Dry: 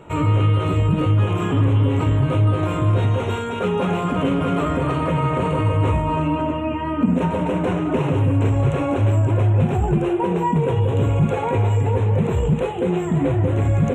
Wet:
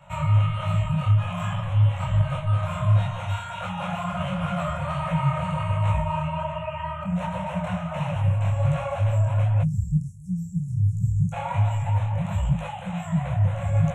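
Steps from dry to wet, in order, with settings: spectral delete 9.62–11.33, 200–5100 Hz; Chebyshev band-stop 190–560 Hz, order 5; detuned doubles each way 47 cents

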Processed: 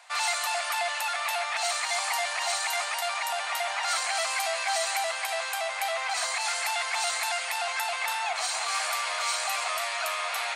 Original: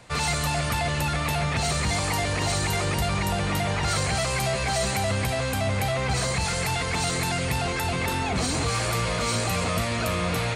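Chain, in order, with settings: elliptic high-pass 700 Hz, stop band 60 dB

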